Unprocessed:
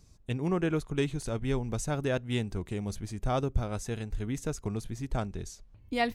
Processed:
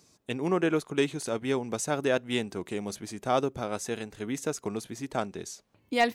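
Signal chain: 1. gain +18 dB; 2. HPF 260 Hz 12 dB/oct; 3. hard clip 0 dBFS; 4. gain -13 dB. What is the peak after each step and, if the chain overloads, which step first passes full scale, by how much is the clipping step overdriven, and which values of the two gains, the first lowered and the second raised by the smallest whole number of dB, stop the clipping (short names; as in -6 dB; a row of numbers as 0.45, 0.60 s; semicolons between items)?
+2.5, +4.5, 0.0, -13.0 dBFS; step 1, 4.5 dB; step 1 +13 dB, step 4 -8 dB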